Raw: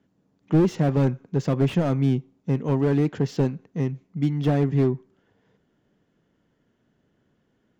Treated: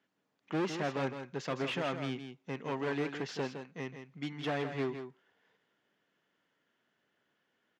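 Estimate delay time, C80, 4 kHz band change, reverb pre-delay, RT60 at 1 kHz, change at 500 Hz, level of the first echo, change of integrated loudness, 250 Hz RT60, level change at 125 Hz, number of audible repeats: 162 ms, no reverb audible, −0.5 dB, no reverb audible, no reverb audible, −10.5 dB, −8.5 dB, −13.5 dB, no reverb audible, −20.5 dB, 1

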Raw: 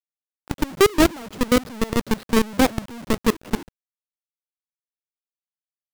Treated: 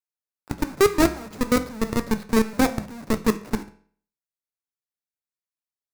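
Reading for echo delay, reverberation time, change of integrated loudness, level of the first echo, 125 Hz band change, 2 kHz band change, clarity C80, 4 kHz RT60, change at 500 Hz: no echo audible, 0.50 s, −2.0 dB, no echo audible, −1.5 dB, −2.5 dB, 19.0 dB, 0.45 s, −2.0 dB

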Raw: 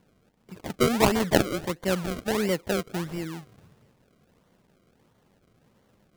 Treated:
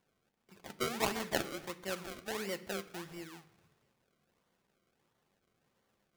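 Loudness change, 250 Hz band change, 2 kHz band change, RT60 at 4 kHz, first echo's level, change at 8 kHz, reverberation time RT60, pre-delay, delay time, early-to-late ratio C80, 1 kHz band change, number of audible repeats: −12.0 dB, −16.0 dB, −9.0 dB, 0.85 s, no echo audible, −8.5 dB, 0.65 s, 3 ms, no echo audible, 18.5 dB, −11.0 dB, no echo audible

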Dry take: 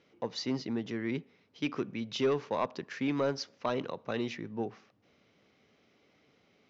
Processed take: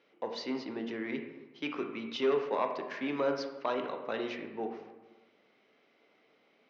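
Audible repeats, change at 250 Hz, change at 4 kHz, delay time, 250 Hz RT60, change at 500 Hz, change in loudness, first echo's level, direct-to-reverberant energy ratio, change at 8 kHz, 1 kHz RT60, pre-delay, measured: no echo audible, −3.0 dB, −2.0 dB, no echo audible, 1.2 s, +1.0 dB, −0.5 dB, no echo audible, 4.0 dB, can't be measured, 1.1 s, 14 ms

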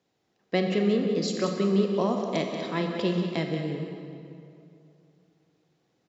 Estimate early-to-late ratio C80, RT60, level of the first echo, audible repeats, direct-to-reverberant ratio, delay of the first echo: 3.5 dB, 2.6 s, −8.5 dB, 1, 2.0 dB, 184 ms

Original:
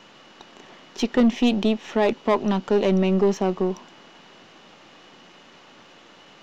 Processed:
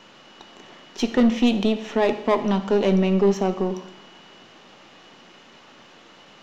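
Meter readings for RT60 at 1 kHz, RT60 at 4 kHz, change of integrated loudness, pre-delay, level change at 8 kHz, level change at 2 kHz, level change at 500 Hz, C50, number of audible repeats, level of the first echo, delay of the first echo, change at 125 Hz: 0.80 s, 0.75 s, +0.5 dB, 6 ms, can't be measured, +0.5 dB, +0.5 dB, 11.5 dB, no echo audible, no echo audible, no echo audible, +1.0 dB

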